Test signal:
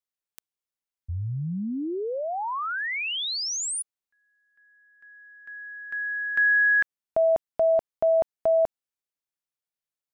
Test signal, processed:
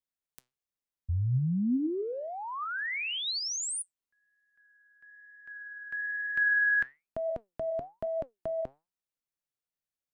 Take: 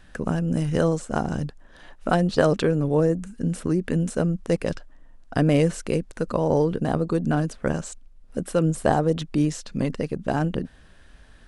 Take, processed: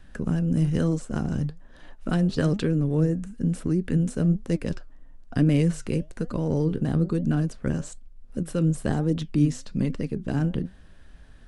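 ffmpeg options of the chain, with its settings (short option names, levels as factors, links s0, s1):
-filter_complex "[0:a]flanger=delay=2.9:depth=5.3:regen=83:speed=1.1:shape=triangular,lowshelf=f=370:g=7,acrossover=split=420|1300[s0][s1][s2];[s1]acompressor=threshold=0.01:ratio=6:attack=0.56:release=22:knee=6[s3];[s0][s3][s2]amix=inputs=3:normalize=0"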